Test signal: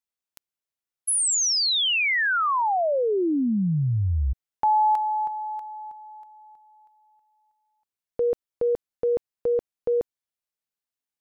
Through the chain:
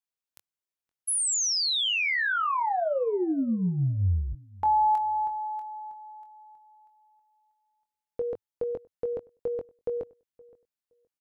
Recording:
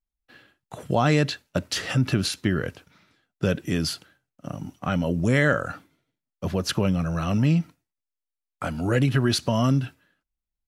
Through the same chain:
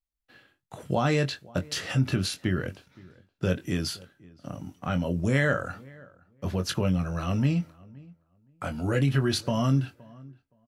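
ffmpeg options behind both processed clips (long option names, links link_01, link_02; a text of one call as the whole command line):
ffmpeg -i in.wav -filter_complex "[0:a]equalizer=frequency=100:width_type=o:width=0.51:gain=2.5,asplit=2[link_01][link_02];[link_02]adelay=22,volume=-8dB[link_03];[link_01][link_03]amix=inputs=2:normalize=0,asplit=2[link_04][link_05];[link_05]adelay=519,lowpass=frequency=1600:poles=1,volume=-23dB,asplit=2[link_06][link_07];[link_07]adelay=519,lowpass=frequency=1600:poles=1,volume=0.18[link_08];[link_06][link_08]amix=inputs=2:normalize=0[link_09];[link_04][link_09]amix=inputs=2:normalize=0,volume=-4.5dB" out.wav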